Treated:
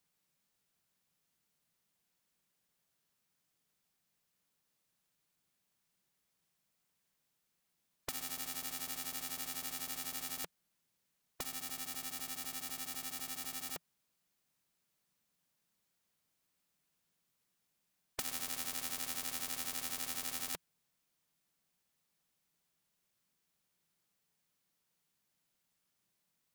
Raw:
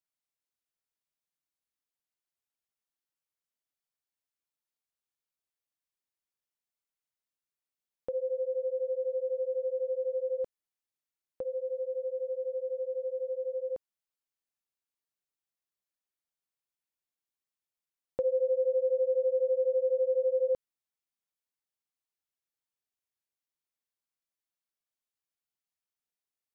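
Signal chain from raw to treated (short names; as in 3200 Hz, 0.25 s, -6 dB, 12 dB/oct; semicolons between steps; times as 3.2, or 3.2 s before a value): cycle switcher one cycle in 2, inverted; bell 170 Hz +11.5 dB 0.81 oct; spectral compressor 10:1; gain +1 dB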